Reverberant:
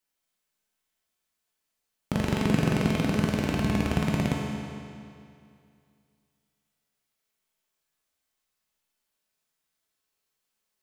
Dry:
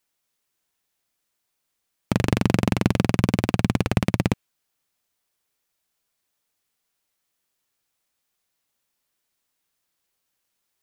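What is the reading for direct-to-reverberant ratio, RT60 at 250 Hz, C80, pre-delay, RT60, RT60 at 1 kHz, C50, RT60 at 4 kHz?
-3.0 dB, 2.4 s, 1.0 dB, 5 ms, 2.4 s, 2.4 s, -0.5 dB, 2.2 s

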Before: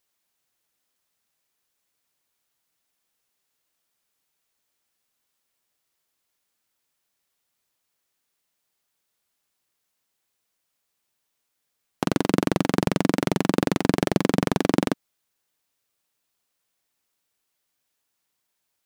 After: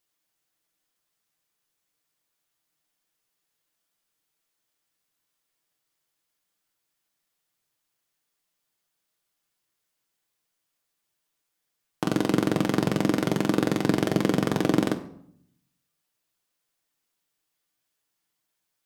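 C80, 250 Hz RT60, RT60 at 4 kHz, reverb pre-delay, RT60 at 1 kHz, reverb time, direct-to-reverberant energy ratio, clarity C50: 16.0 dB, 0.90 s, 0.50 s, 6 ms, 0.65 s, 0.70 s, 4.5 dB, 13.0 dB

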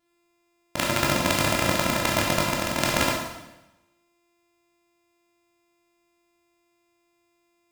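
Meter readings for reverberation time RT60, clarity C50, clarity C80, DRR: 1.0 s, 1.5 dB, 4.0 dB, -3.0 dB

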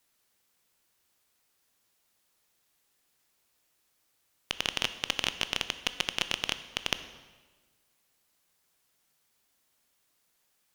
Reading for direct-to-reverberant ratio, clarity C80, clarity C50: 11.0 dB, 14.0 dB, 12.5 dB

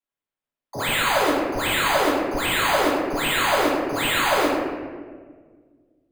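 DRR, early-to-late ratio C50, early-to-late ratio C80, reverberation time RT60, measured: -8.5 dB, -1.0 dB, 1.0 dB, 1.6 s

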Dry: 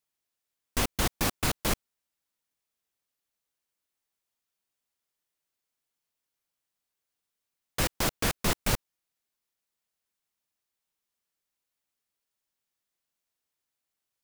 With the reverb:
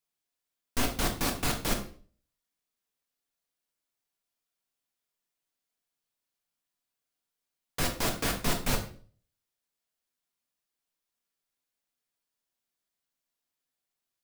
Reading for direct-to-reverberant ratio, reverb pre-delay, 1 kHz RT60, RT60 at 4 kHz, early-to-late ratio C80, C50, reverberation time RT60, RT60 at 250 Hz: 2.0 dB, 4 ms, 0.40 s, 0.40 s, 14.0 dB, 9.0 dB, 0.45 s, 0.50 s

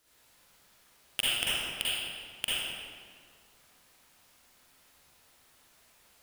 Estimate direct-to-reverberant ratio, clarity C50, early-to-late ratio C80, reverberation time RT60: -9.5 dB, -7.0 dB, -3.0 dB, 1.9 s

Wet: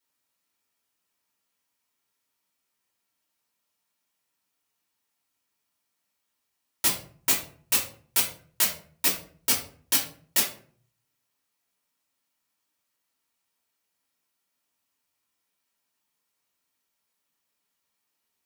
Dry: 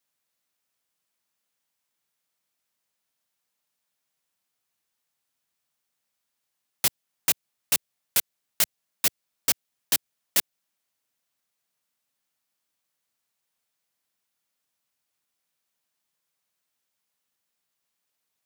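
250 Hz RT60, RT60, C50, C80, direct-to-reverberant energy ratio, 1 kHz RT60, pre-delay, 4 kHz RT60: 0.65 s, 0.50 s, 8.0 dB, 12.5 dB, -3.5 dB, 0.45 s, 3 ms, 0.30 s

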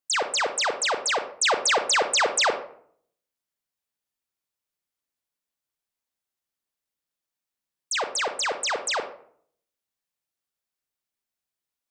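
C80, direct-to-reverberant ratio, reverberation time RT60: 14.0 dB, 7.5 dB, 0.60 s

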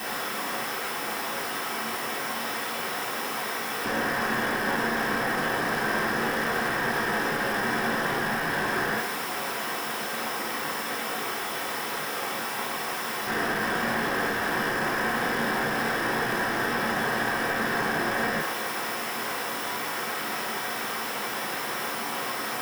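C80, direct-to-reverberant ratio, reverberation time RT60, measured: 8.0 dB, -6.5 dB, 0.60 s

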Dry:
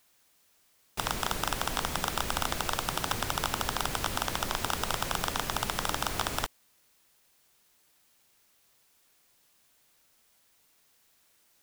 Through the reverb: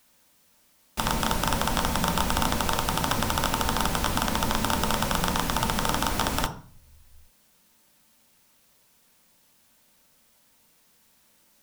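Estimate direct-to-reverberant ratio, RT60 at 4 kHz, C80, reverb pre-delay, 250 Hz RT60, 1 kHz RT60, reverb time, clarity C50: 4.5 dB, 0.40 s, 16.5 dB, 3 ms, 0.70 s, 0.45 s, 0.40 s, 12.5 dB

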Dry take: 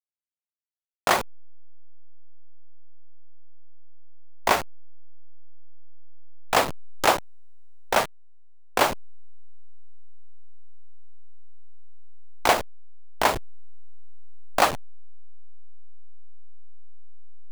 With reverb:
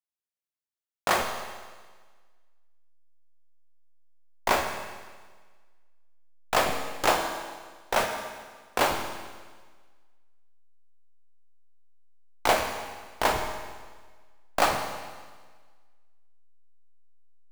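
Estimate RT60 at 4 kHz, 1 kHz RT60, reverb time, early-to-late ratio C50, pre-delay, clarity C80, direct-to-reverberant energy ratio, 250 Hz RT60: 1.5 s, 1.5 s, 1.5 s, 5.0 dB, 11 ms, 7.0 dB, 2.5 dB, 1.5 s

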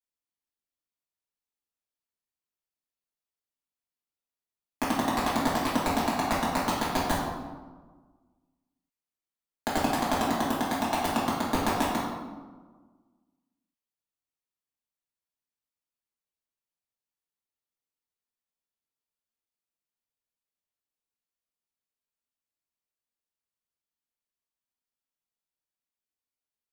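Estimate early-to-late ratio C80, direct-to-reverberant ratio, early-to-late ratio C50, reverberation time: 3.0 dB, -8.5 dB, 0.5 dB, 1.4 s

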